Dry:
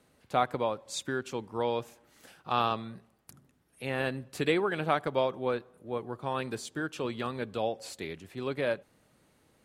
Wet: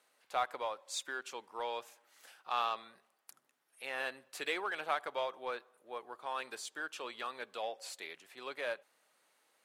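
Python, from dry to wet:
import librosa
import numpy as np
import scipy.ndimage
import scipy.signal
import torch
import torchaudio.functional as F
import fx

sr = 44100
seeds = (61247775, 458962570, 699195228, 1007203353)

p1 = scipy.signal.sosfilt(scipy.signal.butter(2, 750.0, 'highpass', fs=sr, output='sos'), x)
p2 = np.clip(10.0 ** (32.5 / 20.0) * p1, -1.0, 1.0) / 10.0 ** (32.5 / 20.0)
p3 = p1 + (p2 * 10.0 ** (-7.0 / 20.0))
y = p3 * 10.0 ** (-5.5 / 20.0)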